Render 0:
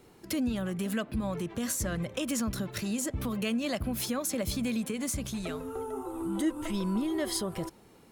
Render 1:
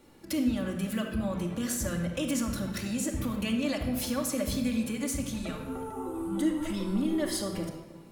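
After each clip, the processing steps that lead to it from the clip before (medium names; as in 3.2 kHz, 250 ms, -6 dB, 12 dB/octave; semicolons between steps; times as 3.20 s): reverberation RT60 1.2 s, pre-delay 3 ms, DRR 0.5 dB; trim -2.5 dB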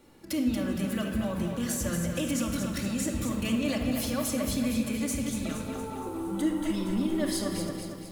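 bit-crushed delay 232 ms, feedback 55%, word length 9-bit, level -6 dB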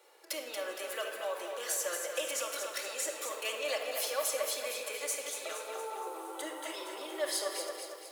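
steep high-pass 420 Hz 48 dB/octave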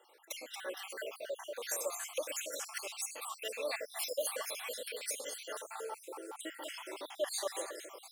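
random holes in the spectrogram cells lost 57%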